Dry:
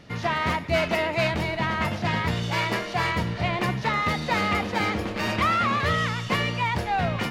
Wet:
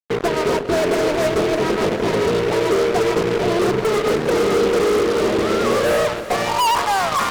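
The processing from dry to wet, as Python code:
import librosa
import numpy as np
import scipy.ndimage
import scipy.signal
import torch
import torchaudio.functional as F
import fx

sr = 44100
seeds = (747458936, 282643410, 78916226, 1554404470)

y = fx.filter_sweep_bandpass(x, sr, from_hz=420.0, to_hz=1100.0, start_s=5.62, end_s=6.81, q=7.8)
y = fx.rotary_switch(y, sr, hz=7.0, then_hz=1.2, switch_at_s=4.45)
y = fx.fuzz(y, sr, gain_db=53.0, gate_db=-53.0)
y = fx.echo_alternate(y, sr, ms=157, hz=820.0, feedback_pct=82, wet_db=-12.0)
y = F.gain(torch.from_numpy(y), -2.0).numpy()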